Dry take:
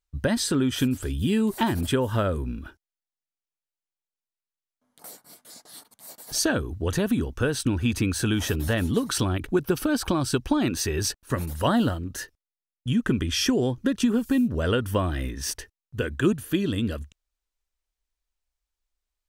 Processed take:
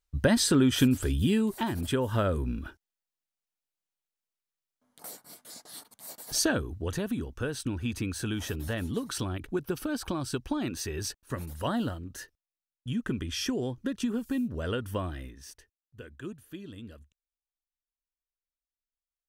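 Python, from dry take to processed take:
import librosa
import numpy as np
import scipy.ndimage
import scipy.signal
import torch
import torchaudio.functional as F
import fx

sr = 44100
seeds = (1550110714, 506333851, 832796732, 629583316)

y = fx.gain(x, sr, db=fx.line((1.15, 1.0), (1.62, -7.0), (2.57, 0.0), (6.17, 0.0), (7.07, -8.0), (15.06, -8.0), (15.49, -18.0)))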